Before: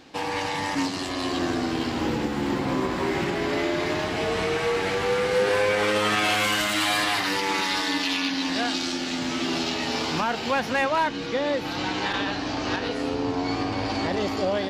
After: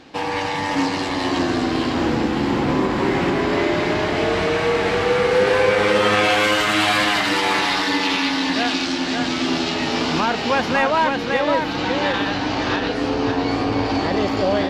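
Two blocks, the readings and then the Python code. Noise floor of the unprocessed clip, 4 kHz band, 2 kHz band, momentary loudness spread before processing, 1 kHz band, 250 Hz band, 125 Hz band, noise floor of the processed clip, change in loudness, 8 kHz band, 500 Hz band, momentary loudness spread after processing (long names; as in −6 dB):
−31 dBFS, +4.5 dB, +5.5 dB, 6 LU, +6.0 dB, +6.5 dB, +6.5 dB, −24 dBFS, +5.5 dB, +1.5 dB, +6.0 dB, 5 LU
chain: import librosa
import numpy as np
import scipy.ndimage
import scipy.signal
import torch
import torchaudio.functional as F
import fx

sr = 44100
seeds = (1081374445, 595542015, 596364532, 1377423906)

y = fx.high_shelf(x, sr, hz=7600.0, db=-11.5)
y = y + 10.0 ** (-4.5 / 20.0) * np.pad(y, (int(557 * sr / 1000.0), 0))[:len(y)]
y = F.gain(torch.from_numpy(y), 5.0).numpy()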